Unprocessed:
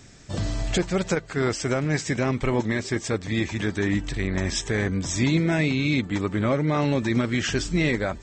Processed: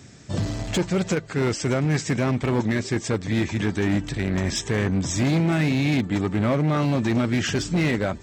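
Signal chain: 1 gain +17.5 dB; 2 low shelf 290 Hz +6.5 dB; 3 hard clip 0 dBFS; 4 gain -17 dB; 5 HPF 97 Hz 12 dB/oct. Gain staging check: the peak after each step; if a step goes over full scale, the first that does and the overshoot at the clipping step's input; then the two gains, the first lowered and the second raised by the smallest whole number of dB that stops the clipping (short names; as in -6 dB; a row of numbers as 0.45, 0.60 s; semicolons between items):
+6.0, +10.0, 0.0, -17.0, -10.5 dBFS; step 1, 10.0 dB; step 1 +7.5 dB, step 4 -7 dB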